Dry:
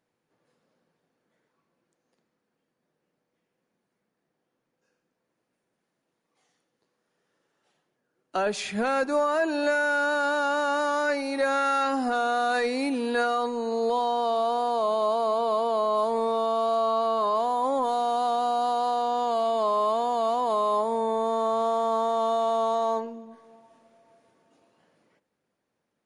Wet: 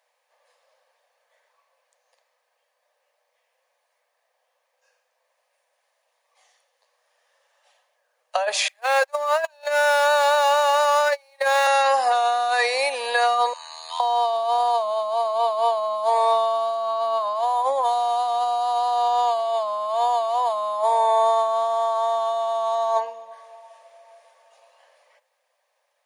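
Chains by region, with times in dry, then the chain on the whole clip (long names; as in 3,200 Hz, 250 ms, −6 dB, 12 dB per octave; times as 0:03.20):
0:08.68–0:11.67: converter with a step at zero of −37 dBFS + high-pass filter 590 Hz + noise gate −27 dBFS, range −33 dB
0:13.53–0:14.00: high-pass filter 1,300 Hz 24 dB per octave + ring modulation 41 Hz
whole clip: elliptic high-pass filter 550 Hz, stop band 40 dB; notch filter 1,400 Hz, Q 5; compressor whose output falls as the input rises −29 dBFS, ratio −0.5; level +9 dB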